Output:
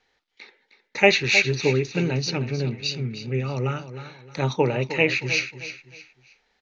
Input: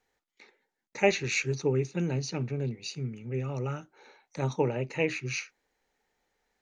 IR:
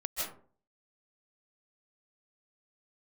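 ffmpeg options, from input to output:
-af "lowpass=frequency=4700:width=0.5412,lowpass=frequency=4700:width=1.3066,highshelf=frequency=2300:gain=11,aecho=1:1:311|622|933:0.251|0.0804|0.0257,volume=5.5dB"

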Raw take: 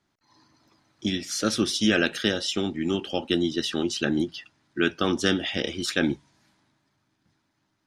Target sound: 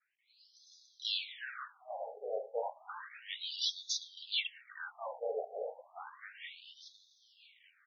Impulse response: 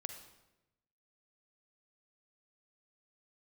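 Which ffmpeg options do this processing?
-filter_complex "[0:a]highpass=350,adynamicequalizer=threshold=0.00891:dfrequency=4000:dqfactor=0.73:tfrequency=4000:tqfactor=0.73:attack=5:release=100:ratio=0.375:range=3:mode=cutabove:tftype=bell,areverse,acompressor=threshold=-38dB:ratio=16,areverse,alimiter=level_in=11dB:limit=-24dB:level=0:latency=1:release=14,volume=-11dB,aphaser=in_gain=1:out_gain=1:delay=3:decay=0.31:speed=0.38:type=triangular,asplit=3[link_01][link_02][link_03];[link_02]asetrate=52444,aresample=44100,atempo=0.840896,volume=-1dB[link_04];[link_03]asetrate=66075,aresample=44100,atempo=0.66742,volume=-18dB[link_05];[link_01][link_04][link_05]amix=inputs=3:normalize=0,dynaudnorm=framelen=120:gausssize=11:maxgain=13.5dB,asplit=2[link_06][link_07];[link_07]adelay=985,lowpass=frequency=2500:poles=1,volume=-11dB,asplit=2[link_08][link_09];[link_09]adelay=985,lowpass=frequency=2500:poles=1,volume=0.41,asplit=2[link_10][link_11];[link_11]adelay=985,lowpass=frequency=2500:poles=1,volume=0.41,asplit=2[link_12][link_13];[link_13]adelay=985,lowpass=frequency=2500:poles=1,volume=0.41[link_14];[link_06][link_08][link_10][link_12][link_14]amix=inputs=5:normalize=0,asplit=2[link_15][link_16];[1:a]atrim=start_sample=2205,asetrate=35721,aresample=44100[link_17];[link_16][link_17]afir=irnorm=-1:irlink=0,volume=-13dB[link_18];[link_15][link_18]amix=inputs=2:normalize=0,afftfilt=real='re*between(b*sr/1024,570*pow(4800/570,0.5+0.5*sin(2*PI*0.32*pts/sr))/1.41,570*pow(4800/570,0.5+0.5*sin(2*PI*0.32*pts/sr))*1.41)':imag='im*between(b*sr/1024,570*pow(4800/570,0.5+0.5*sin(2*PI*0.32*pts/sr))/1.41,570*pow(4800/570,0.5+0.5*sin(2*PI*0.32*pts/sr))*1.41)':win_size=1024:overlap=0.75,volume=-5dB"

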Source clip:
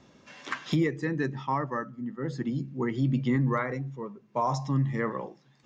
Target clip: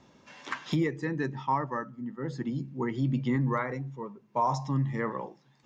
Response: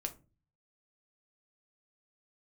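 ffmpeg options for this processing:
-af "equalizer=frequency=910:width_type=o:width=0.26:gain=6,volume=-2dB"

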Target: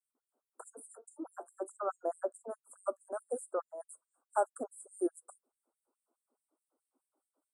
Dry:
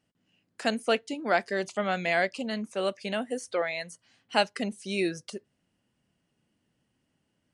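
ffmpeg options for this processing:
ffmpeg -i in.wav -filter_complex "[0:a]acrossover=split=1600[link_01][link_02];[link_01]aeval=exprs='val(0)*(1-0.5/2+0.5/2*cos(2*PI*4.9*n/s))':channel_layout=same[link_03];[link_02]aeval=exprs='val(0)*(1-0.5/2-0.5/2*cos(2*PI*4.9*n/s))':channel_layout=same[link_04];[link_03][link_04]amix=inputs=2:normalize=0,asuperstop=centerf=3400:order=20:qfactor=0.53,afftfilt=real='re*gte(b*sr/1024,240*pow(6700/240,0.5+0.5*sin(2*PI*4.7*pts/sr)))':imag='im*gte(b*sr/1024,240*pow(6700/240,0.5+0.5*sin(2*PI*4.7*pts/sr)))':win_size=1024:overlap=0.75,volume=1dB" out.wav

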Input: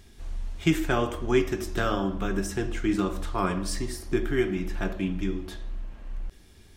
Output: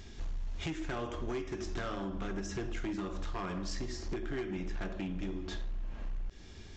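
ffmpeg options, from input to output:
ffmpeg -i in.wav -af "acompressor=threshold=-37dB:ratio=5,aresample=16000,volume=35.5dB,asoftclip=hard,volume=-35.5dB,aresample=44100,volume=3.5dB" out.wav

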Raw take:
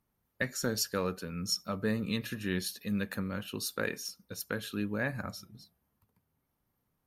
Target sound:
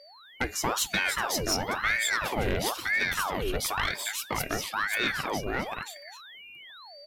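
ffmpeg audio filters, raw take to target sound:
ffmpeg -i in.wav -filter_complex "[0:a]aeval=exprs='val(0)+0.00178*sin(2*PI*2600*n/s)':channel_layout=same,asplit=2[link_01][link_02];[link_02]aecho=0:1:530:0.708[link_03];[link_01][link_03]amix=inputs=2:normalize=0,asoftclip=type=tanh:threshold=-25.5dB,aeval=exprs='val(0)*sin(2*PI*1100*n/s+1100*0.85/1*sin(2*PI*1*n/s))':channel_layout=same,volume=8.5dB" out.wav

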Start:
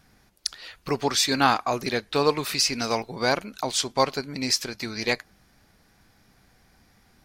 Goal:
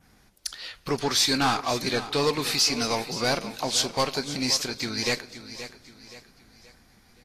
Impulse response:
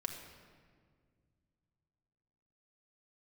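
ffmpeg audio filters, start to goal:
-filter_complex "[0:a]adynamicequalizer=threshold=0.0112:dfrequency=4500:dqfactor=0.88:tfrequency=4500:tqfactor=0.88:attack=5:release=100:ratio=0.375:range=2:mode=boostabove:tftype=bell,asoftclip=type=tanh:threshold=-18.5dB,aecho=1:1:524|1048|1572|2096:0.224|0.0918|0.0376|0.0154,asplit=2[link_01][link_02];[1:a]atrim=start_sample=2205,asetrate=48510,aresample=44100[link_03];[link_02][link_03]afir=irnorm=-1:irlink=0,volume=-14.5dB[link_04];[link_01][link_04]amix=inputs=2:normalize=0" -ar 48000 -c:a libvorbis -b:a 32k

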